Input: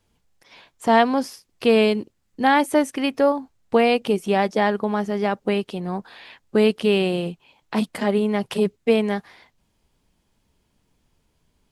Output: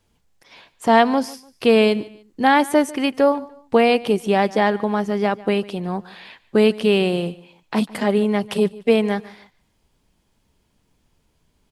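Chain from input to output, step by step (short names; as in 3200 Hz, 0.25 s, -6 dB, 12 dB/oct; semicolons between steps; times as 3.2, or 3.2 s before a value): feedback echo 0.147 s, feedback 31%, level -20.5 dB; gain +2 dB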